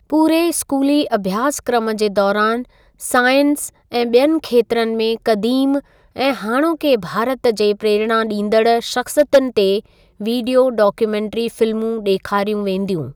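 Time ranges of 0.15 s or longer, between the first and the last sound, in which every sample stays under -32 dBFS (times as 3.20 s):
2.63–3.01 s
3.69–3.92 s
5.80–6.16 s
9.80–10.20 s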